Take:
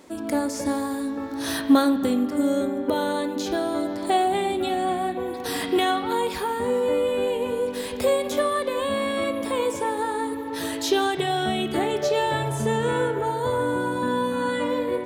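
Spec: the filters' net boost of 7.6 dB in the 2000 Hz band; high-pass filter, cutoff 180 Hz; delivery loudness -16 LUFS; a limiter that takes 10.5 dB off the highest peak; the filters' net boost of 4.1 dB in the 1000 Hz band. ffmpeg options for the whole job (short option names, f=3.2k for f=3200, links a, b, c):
-af "highpass=180,equalizer=f=1k:t=o:g=3.5,equalizer=f=2k:t=o:g=8.5,volume=8.5dB,alimiter=limit=-6.5dB:level=0:latency=1"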